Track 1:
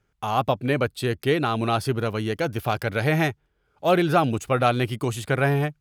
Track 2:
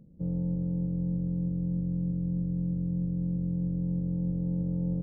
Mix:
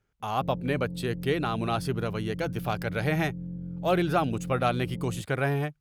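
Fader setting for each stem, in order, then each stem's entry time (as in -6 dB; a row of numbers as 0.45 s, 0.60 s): -5.5 dB, -6.5 dB; 0.00 s, 0.20 s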